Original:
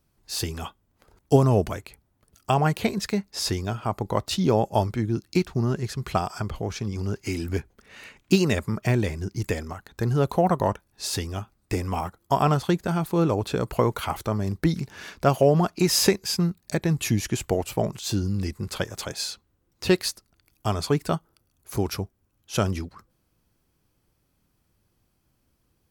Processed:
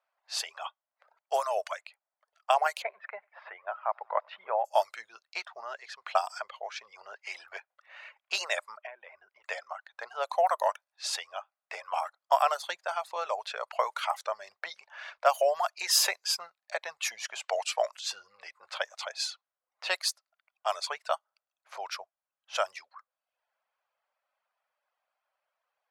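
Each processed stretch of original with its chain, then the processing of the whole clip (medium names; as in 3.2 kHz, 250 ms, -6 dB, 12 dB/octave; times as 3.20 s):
2.82–4.65 s: low-pass 2 kHz 24 dB/octave + bass shelf 210 Hz -8.5 dB + thinning echo 94 ms, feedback 83%, high-pass 500 Hz, level -20.5 dB
8.77–9.44 s: Savitzky-Golay filter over 25 samples + compression 5:1, threshold -33 dBFS
17.42–17.91 s: band-pass 210–6800 Hz + treble shelf 2.1 kHz +10.5 dB
whole clip: reverb removal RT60 0.65 s; elliptic high-pass 600 Hz, stop band 50 dB; level-controlled noise filter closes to 2.2 kHz, open at -24 dBFS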